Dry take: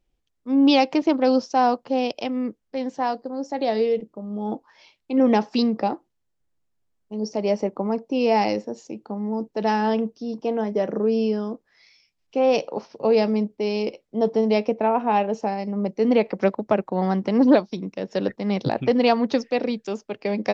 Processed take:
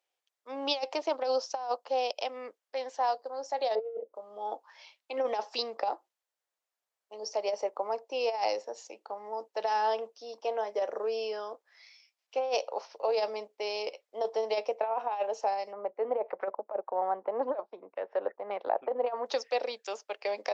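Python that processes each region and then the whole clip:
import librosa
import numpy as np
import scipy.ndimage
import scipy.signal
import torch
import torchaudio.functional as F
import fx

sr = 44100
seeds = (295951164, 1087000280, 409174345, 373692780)

y = fx.chain(x, sr, fx.lowpass(hz=1000.0, slope=12),
    fx.peak_eq(hz=520.0, db=13.0, octaves=0.71), at=(3.75, 4.15))
y = fx.chain(y, sr, fx.filter_lfo_lowpass(shape='saw_down', hz=1.8, low_hz=870.0, high_hz=1800.0, q=0.93),
    fx.air_absorb(metres=190.0), at=(15.73, 19.26))
y = scipy.signal.sosfilt(scipy.signal.butter(4, 560.0, 'highpass', fs=sr, output='sos'), y)
y = fx.dynamic_eq(y, sr, hz=2000.0, q=0.93, threshold_db=-40.0, ratio=4.0, max_db=-7)
y = fx.over_compress(y, sr, threshold_db=-25.0, ratio=-0.5)
y = y * librosa.db_to_amplitude(-2.5)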